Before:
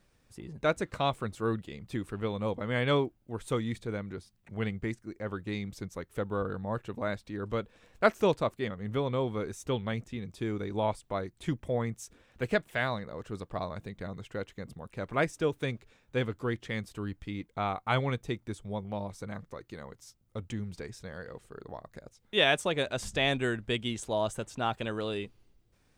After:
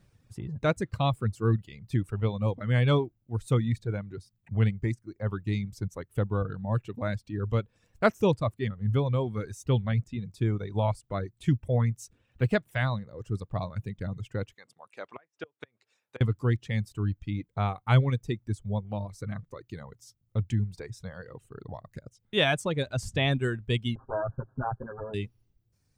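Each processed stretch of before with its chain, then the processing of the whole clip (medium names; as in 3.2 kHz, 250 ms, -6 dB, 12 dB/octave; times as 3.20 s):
14.54–16.21 s: low-pass that closes with the level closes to 2.3 kHz, closed at -27.5 dBFS + high-pass 570 Hz + inverted gate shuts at -25 dBFS, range -25 dB
23.95–25.14 s: comb filter that takes the minimum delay 7.6 ms + brick-wall FIR low-pass 1.7 kHz
whole clip: reverb removal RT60 1.8 s; peaking EQ 110 Hz +14 dB 1.5 oct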